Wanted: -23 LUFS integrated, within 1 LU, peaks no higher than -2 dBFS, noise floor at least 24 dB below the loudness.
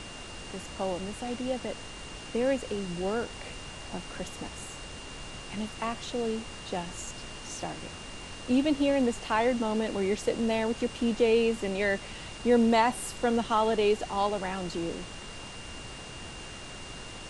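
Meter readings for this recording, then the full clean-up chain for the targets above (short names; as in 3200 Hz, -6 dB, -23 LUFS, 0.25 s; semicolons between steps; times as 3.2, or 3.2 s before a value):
steady tone 2800 Hz; tone level -47 dBFS; noise floor -43 dBFS; noise floor target -54 dBFS; loudness -30.0 LUFS; peak -12.5 dBFS; loudness target -23.0 LUFS
-> notch 2800 Hz, Q 30; noise print and reduce 11 dB; gain +7 dB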